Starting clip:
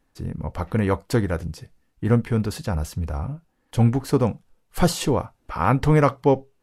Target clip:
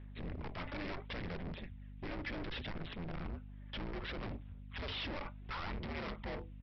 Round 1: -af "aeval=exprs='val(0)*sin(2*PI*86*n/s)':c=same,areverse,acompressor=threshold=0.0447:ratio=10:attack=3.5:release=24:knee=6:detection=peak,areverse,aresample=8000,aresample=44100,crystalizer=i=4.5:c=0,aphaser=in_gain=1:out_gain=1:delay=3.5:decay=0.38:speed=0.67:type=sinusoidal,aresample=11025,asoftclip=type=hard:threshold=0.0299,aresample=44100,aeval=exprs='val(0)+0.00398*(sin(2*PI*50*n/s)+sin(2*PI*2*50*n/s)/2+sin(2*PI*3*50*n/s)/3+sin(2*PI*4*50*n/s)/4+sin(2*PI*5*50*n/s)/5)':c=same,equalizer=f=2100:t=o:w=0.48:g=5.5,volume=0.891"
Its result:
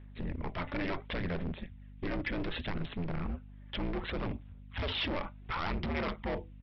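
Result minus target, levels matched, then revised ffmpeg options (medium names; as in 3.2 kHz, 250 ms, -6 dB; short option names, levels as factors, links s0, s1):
hard clipper: distortion -4 dB
-af "aeval=exprs='val(0)*sin(2*PI*86*n/s)':c=same,areverse,acompressor=threshold=0.0447:ratio=10:attack=3.5:release=24:knee=6:detection=peak,areverse,aresample=8000,aresample=44100,crystalizer=i=4.5:c=0,aphaser=in_gain=1:out_gain=1:delay=3.5:decay=0.38:speed=0.67:type=sinusoidal,aresample=11025,asoftclip=type=hard:threshold=0.01,aresample=44100,aeval=exprs='val(0)+0.00398*(sin(2*PI*50*n/s)+sin(2*PI*2*50*n/s)/2+sin(2*PI*3*50*n/s)/3+sin(2*PI*4*50*n/s)/4+sin(2*PI*5*50*n/s)/5)':c=same,equalizer=f=2100:t=o:w=0.48:g=5.5,volume=0.891"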